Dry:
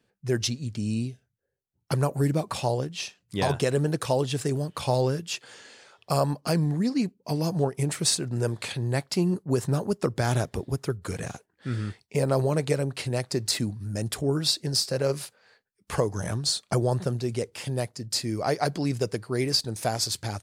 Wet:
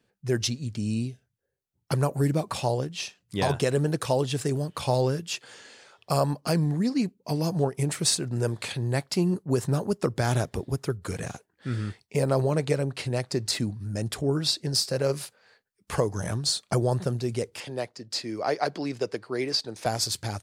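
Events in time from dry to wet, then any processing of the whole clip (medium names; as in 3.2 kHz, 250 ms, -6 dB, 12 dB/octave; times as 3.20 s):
12.33–14.74 s: treble shelf 10 kHz -8 dB
17.60–19.86 s: three-band isolator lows -13 dB, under 250 Hz, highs -14 dB, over 5.9 kHz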